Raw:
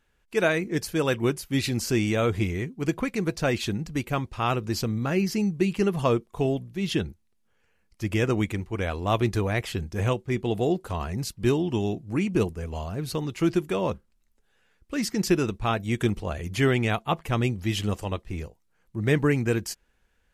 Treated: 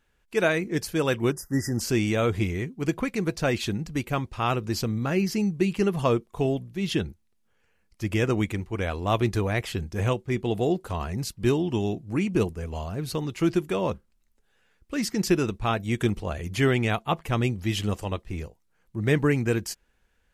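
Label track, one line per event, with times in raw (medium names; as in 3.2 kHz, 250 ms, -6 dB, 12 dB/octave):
1.320000	1.800000	spectral selection erased 2–4.8 kHz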